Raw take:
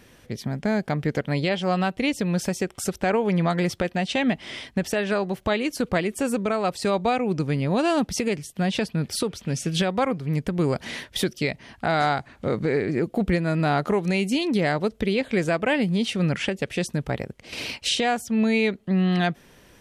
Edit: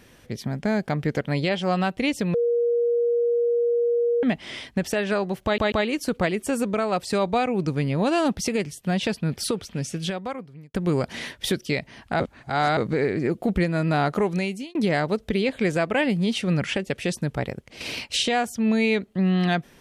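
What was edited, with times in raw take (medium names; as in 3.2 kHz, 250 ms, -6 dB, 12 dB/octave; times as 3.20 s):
2.34–4.23 s: bleep 474 Hz -18.5 dBFS
5.44 s: stutter 0.14 s, 3 plays
9.28–10.46 s: fade out
11.92–12.49 s: reverse
14.03–14.47 s: fade out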